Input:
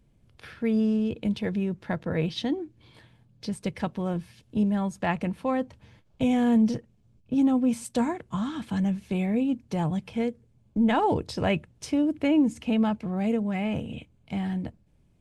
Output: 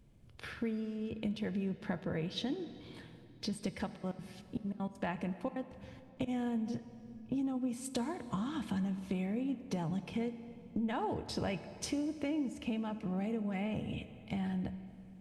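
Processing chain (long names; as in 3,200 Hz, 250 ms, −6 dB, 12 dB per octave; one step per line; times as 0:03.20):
downward compressor 6 to 1, threshold −34 dBFS, peak gain reduction 15.5 dB
0:03.86–0:06.27: gate pattern ".x.x.xxxxx" 197 BPM −24 dB
convolution reverb RT60 3.1 s, pre-delay 13 ms, DRR 11.5 dB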